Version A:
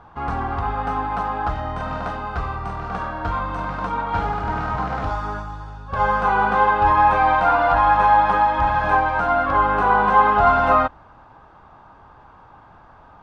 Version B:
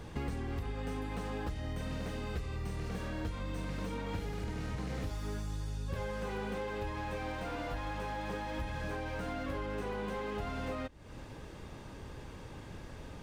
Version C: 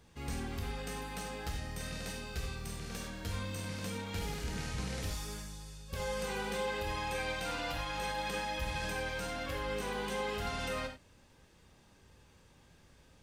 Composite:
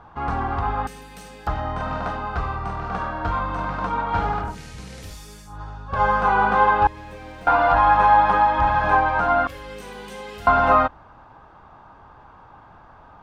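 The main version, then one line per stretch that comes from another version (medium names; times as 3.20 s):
A
0.87–1.47 s: from C
4.48–5.53 s: from C, crossfade 0.16 s
6.87–7.47 s: from B
9.47–10.47 s: from C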